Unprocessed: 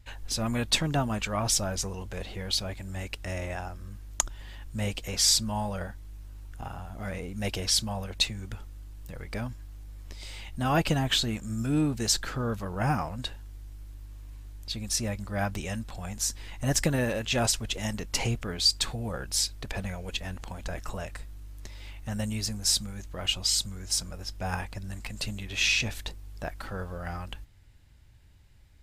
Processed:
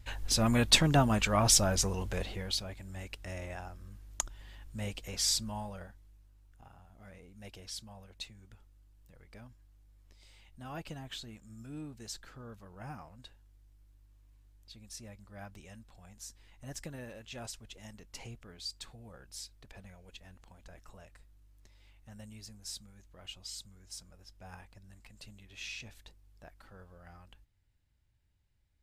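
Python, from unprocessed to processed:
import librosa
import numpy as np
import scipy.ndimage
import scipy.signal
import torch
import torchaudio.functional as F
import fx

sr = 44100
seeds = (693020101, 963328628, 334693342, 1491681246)

y = fx.gain(x, sr, db=fx.line((2.14, 2.0), (2.66, -7.5), (5.47, -7.5), (6.31, -18.0)))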